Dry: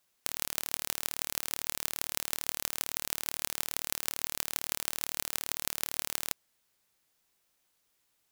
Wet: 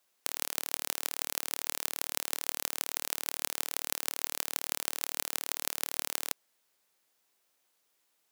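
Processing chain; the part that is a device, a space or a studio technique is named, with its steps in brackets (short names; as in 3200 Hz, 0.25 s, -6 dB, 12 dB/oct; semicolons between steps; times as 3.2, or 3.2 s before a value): filter by subtraction (in parallel: LPF 460 Hz 12 dB/oct + phase invert)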